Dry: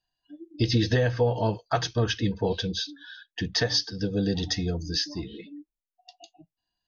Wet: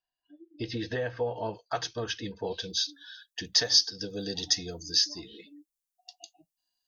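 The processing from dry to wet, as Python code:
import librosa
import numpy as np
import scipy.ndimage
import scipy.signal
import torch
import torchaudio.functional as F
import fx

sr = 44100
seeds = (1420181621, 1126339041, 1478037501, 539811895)

y = fx.bass_treble(x, sr, bass_db=-10, treble_db=fx.steps((0.0, -10.0), (1.53, 3.0), (2.62, 14.0)))
y = y * librosa.db_to_amplitude(-5.5)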